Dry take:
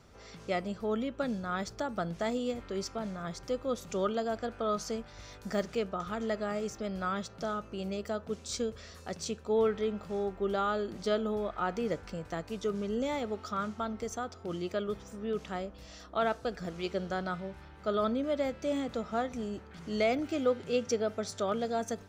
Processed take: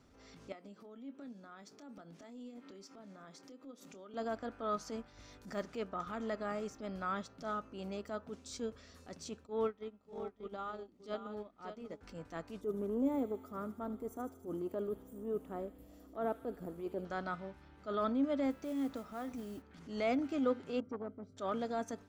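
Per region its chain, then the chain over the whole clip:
0.52–4.14 s: high-pass 180 Hz 24 dB/octave + compression 16:1, threshold -42 dBFS + doubling 25 ms -12 dB
9.46–12.01 s: peaking EQ 1.6 kHz -5.5 dB 0.29 oct + delay 585 ms -6 dB + upward expansion 2.5:1, over -37 dBFS
12.61–17.05 s: FFT filter 180 Hz 0 dB, 400 Hz +5 dB, 1.6 kHz -11 dB, 5.6 kHz -18 dB, 12 kHz +13 dB + feedback echo behind a high-pass 76 ms, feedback 77%, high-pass 2.4 kHz, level -7.5 dB
18.50–19.62 s: compression 3:1, threshold -35 dBFS + modulation noise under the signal 18 dB
20.80–21.37 s: boxcar filter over 50 samples + transformer saturation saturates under 600 Hz
whole clip: peaking EQ 270 Hz +13 dB 0.3 oct; transient shaper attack -8 dB, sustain -3 dB; dynamic bell 1.1 kHz, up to +6 dB, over -47 dBFS, Q 0.76; trim -7.5 dB

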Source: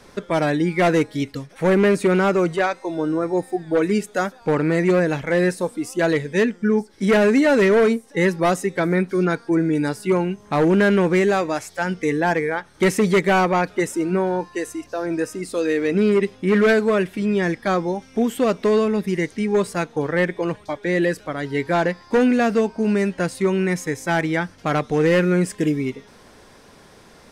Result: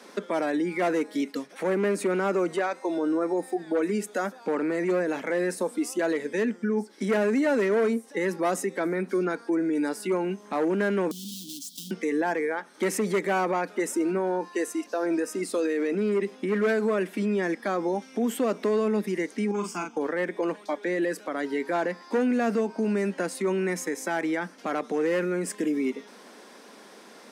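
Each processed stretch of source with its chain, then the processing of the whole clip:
11.11–11.91 s: square wave that keeps the level + Chebyshev band-stop 280–3200 Hz, order 5 + compression 8:1, threshold -32 dBFS
19.51–19.97 s: static phaser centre 2.7 kHz, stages 8 + doubling 39 ms -6 dB + compression 2:1, threshold -27 dBFS
whole clip: dynamic bell 3.6 kHz, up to -5 dB, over -41 dBFS, Q 1.1; peak limiter -18.5 dBFS; steep high-pass 200 Hz 48 dB/octave

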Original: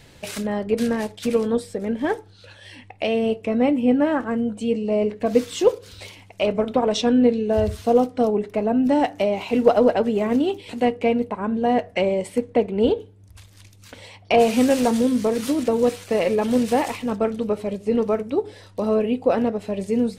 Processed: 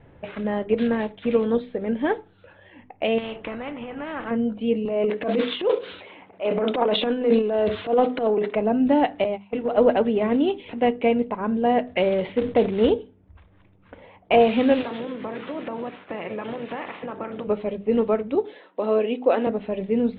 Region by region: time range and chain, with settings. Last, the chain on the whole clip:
3.18–4.31 s: compression 10:1, threshold -23 dBFS + spectrum-flattening compressor 2:1
4.85–8.56 s: high-pass 290 Hz + transient shaper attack -9 dB, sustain +11 dB
9.24–9.78 s: hum notches 60/120/180/240/300/360/420/480 Hz + gate -24 dBFS, range -23 dB + compression 12:1, threshold -20 dBFS
11.87–12.90 s: short-mantissa float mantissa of 2-bit + decay stretcher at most 130 dB/s
14.80–17.46 s: spectral peaks clipped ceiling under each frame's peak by 15 dB + high-pass 140 Hz + compression, threshold -27 dBFS
18.35–19.47 s: high-pass 250 Hz 24 dB/octave + treble shelf 5.2 kHz +9.5 dB
whole clip: steep low-pass 3.7 kHz 72 dB/octave; hum notches 50/100/150/200/250 Hz; level-controlled noise filter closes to 1.2 kHz, open at -16 dBFS

